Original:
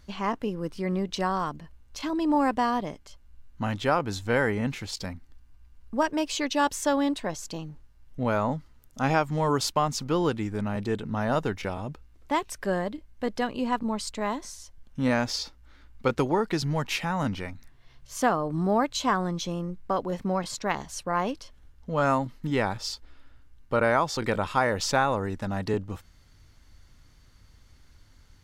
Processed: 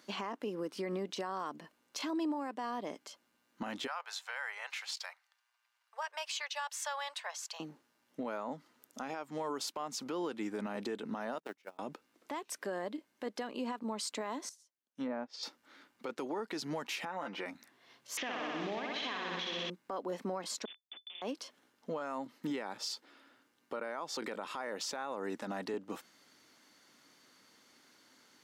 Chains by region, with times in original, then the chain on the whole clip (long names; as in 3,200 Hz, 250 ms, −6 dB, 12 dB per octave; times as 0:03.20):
0:03.87–0:07.60: Bessel high-pass filter 1,200 Hz, order 8 + high-shelf EQ 5,600 Hz −8 dB
0:11.38–0:11.79: one scale factor per block 5 bits + noise gate −27 dBFS, range −32 dB + saturating transformer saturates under 420 Hz
0:14.49–0:15.43: treble cut that deepens with the level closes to 1,000 Hz, closed at −20 dBFS + high-shelf EQ 3,800 Hz +9 dB + expander for the loud parts 2.5 to 1, over −41 dBFS
0:17.05–0:17.46: bass and treble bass −12 dB, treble −12 dB + comb filter 5.8 ms, depth 68%
0:18.17–0:19.70: variable-slope delta modulation 32 kbit/s + flat-topped bell 2,500 Hz +13 dB 1.3 octaves + flutter between parallel walls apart 10.7 metres, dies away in 1.2 s
0:20.65–0:21.22: gate with flip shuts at −27 dBFS, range −27 dB + comparator with hysteresis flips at −46.5 dBFS + voice inversion scrambler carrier 3,500 Hz
whole clip: high-pass filter 240 Hz 24 dB per octave; downward compressor 6 to 1, threshold −33 dBFS; brickwall limiter −30 dBFS; level +1 dB